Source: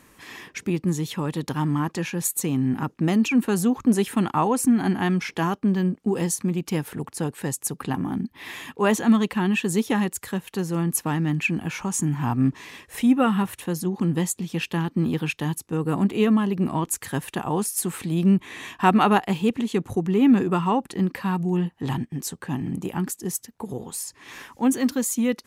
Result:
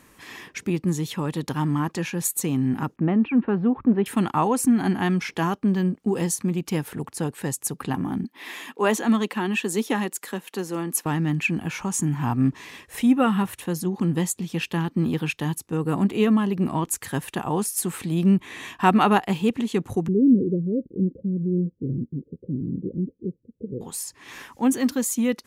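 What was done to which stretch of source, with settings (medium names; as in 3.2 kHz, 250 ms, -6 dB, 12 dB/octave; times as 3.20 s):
2.96–4.06 s: Gaussian low-pass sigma 3.9 samples
8.24–11.06 s: high-pass 220 Hz 24 dB/octave
20.08–23.81 s: steep low-pass 540 Hz 96 dB/octave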